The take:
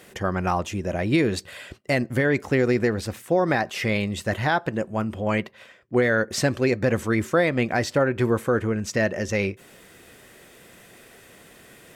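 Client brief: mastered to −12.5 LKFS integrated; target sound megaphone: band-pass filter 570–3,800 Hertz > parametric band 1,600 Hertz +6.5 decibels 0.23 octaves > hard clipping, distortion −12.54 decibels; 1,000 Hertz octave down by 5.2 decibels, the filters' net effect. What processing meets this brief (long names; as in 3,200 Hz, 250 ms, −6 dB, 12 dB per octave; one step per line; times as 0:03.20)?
band-pass filter 570–3,800 Hz
parametric band 1,000 Hz −7 dB
parametric band 1,600 Hz +6.5 dB 0.23 octaves
hard clipping −21 dBFS
level +17.5 dB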